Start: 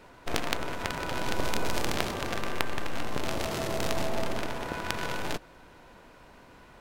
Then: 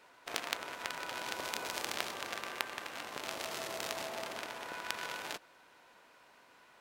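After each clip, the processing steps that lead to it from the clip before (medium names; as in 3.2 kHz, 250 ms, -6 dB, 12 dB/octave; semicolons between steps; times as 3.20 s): high-pass 1 kHz 6 dB/octave; trim -4 dB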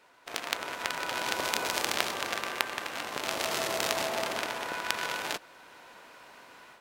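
level rider gain up to 10 dB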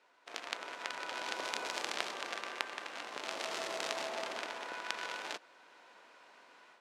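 band-pass 260–7200 Hz; trim -7.5 dB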